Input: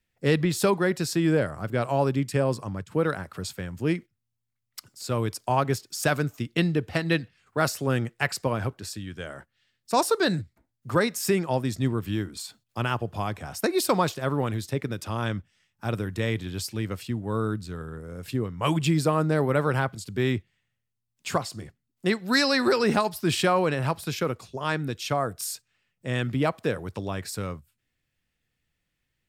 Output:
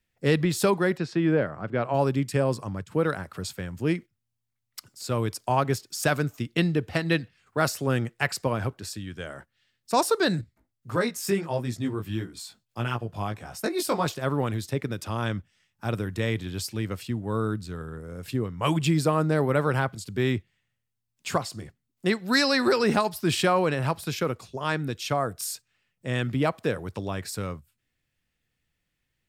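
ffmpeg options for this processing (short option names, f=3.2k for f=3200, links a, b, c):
-filter_complex "[0:a]asplit=3[a][b][c];[a]afade=t=out:st=0.96:d=0.02[d];[b]highpass=120,lowpass=2.8k,afade=t=in:st=0.96:d=0.02,afade=t=out:st=1.93:d=0.02[e];[c]afade=t=in:st=1.93:d=0.02[f];[d][e][f]amix=inputs=3:normalize=0,asettb=1/sr,asplit=3[g][h][i];[g]atrim=end=10.414[j];[h]atrim=start=10.41:end=14.06,asetpts=PTS-STARTPTS,afade=t=in:d=0.004:c=qsin,afade=t=out:st=3.646:d=0.004:c=qsin,flanger=delay=16.5:depth=3.4:speed=1.6[k];[i]atrim=start=14.056[l];[j][k]acrossfade=d=0.004:c1=hsin:c2=qsin[m];[m][l]acrossfade=d=0.004:c1=qsin:c2=hsin"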